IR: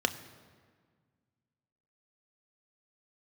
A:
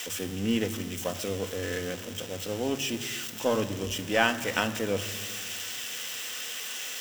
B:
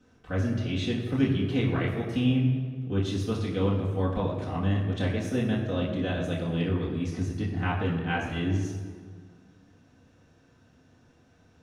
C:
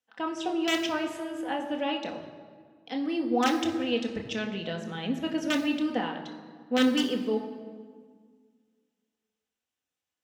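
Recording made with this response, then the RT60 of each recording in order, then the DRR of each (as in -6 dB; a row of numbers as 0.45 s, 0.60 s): A; 1.7 s, 1.7 s, 1.7 s; 8.5 dB, -7.5 dB, 1.5 dB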